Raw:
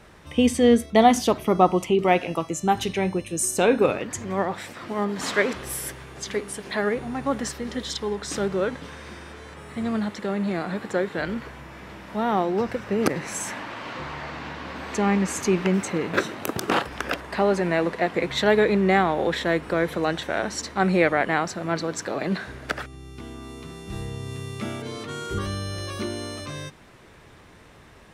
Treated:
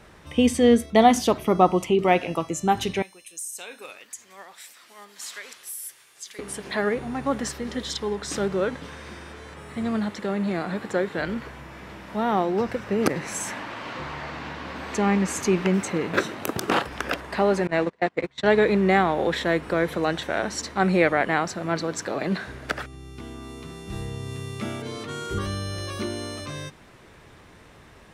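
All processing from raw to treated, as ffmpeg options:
ffmpeg -i in.wav -filter_complex "[0:a]asettb=1/sr,asplit=3[link_01][link_02][link_03];[link_01]atrim=end=3.024[link_04];[link_02]atrim=start=3.02:end=6.39,asetpts=PTS-STARTPTS,afade=type=in:duration=0.004:curve=qsin,afade=type=out:start_time=3.366:duration=0.004:curve=qsin,aderivative,acompressor=threshold=-32dB:ratio=4:attack=3.2:release=140:knee=1:detection=peak,asoftclip=type=hard:threshold=-26dB[link_05];[link_03]atrim=start=6.386[link_06];[link_04][link_05]acrossfade=duration=0.004:curve1=hsin:curve2=qsin[link_07];[link_07][link_06]acrossfade=duration=0.004:curve1=qsin:curve2=hsin,asettb=1/sr,asplit=3[link_08][link_09][link_10];[link_08]atrim=end=17.674[link_11];[link_09]atrim=start=17.67:end=18.62,asetpts=PTS-STARTPTS,afade=type=in:duration=0.004:curve=qsin,afade=type=out:start_time=0.946:duration=0.004:curve=qsin,agate=range=-29dB:threshold=-24dB:ratio=16:release=100:detection=peak,lowpass=frequency=9200:width=0.5412,lowpass=frequency=9200:width=1.3066[link_12];[link_10]atrim=start=18.616[link_13];[link_11][link_12]acrossfade=duration=0.004:curve1=hsin:curve2=qsin[link_14];[link_14][link_13]acrossfade=duration=0.004:curve1=qsin:curve2=hsin" out.wav

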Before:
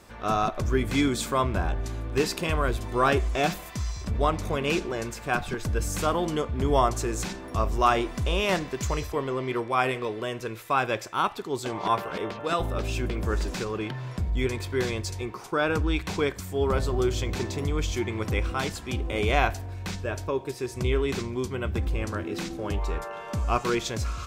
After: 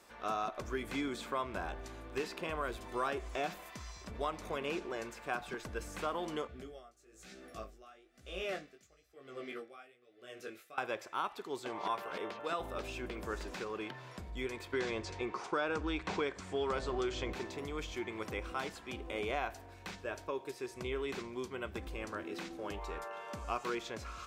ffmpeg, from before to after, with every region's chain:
ffmpeg -i in.wav -filter_complex "[0:a]asettb=1/sr,asplit=3[link_01][link_02][link_03];[link_01]atrim=end=6.474[link_04];[link_02]atrim=start=6.47:end=10.78,asetpts=PTS-STARTPTS,afade=type=in:duration=0.004:curve=qsin,afade=type=out:start_time=4.306:duration=0.004:curve=qsin,asuperstop=centerf=960:order=4:qfactor=2.6,flanger=delay=15.5:depth=5.8:speed=1.1,aeval=exprs='val(0)*pow(10,-25*(0.5-0.5*cos(2*PI*1*n/s))/20)':channel_layout=same[link_05];[link_03]atrim=start=10.776[link_06];[link_04][link_05]acrossfade=duration=0.004:curve1=hsin:curve2=qsin[link_07];[link_07][link_06]acrossfade=duration=0.004:curve1=qsin:curve2=hsin,asettb=1/sr,asplit=3[link_08][link_09][link_10];[link_08]atrim=end=14.734[link_11];[link_09]atrim=start=14.73:end=17.33,asetpts=PTS-STARTPTS,afade=type=in:duration=0.004:curve=qsin,afade=type=out:start_time=2.596:duration=0.004:curve=qsin,lowpass=frequency=8000:width=0.5412,lowpass=frequency=8000:width=1.3066,acontrast=82[link_12];[link_10]atrim=start=17.326[link_13];[link_11][link_12]acrossfade=duration=0.004:curve1=hsin:curve2=qsin[link_14];[link_14][link_13]acrossfade=duration=0.004:curve1=qsin:curve2=hsin,highpass=47,equalizer=frequency=96:width_type=o:width=2.2:gain=-15,acrossover=split=1500|3400[link_15][link_16][link_17];[link_15]acompressor=threshold=-27dB:ratio=4[link_18];[link_16]acompressor=threshold=-38dB:ratio=4[link_19];[link_17]acompressor=threshold=-49dB:ratio=4[link_20];[link_18][link_19][link_20]amix=inputs=3:normalize=0,volume=-6.5dB" out.wav

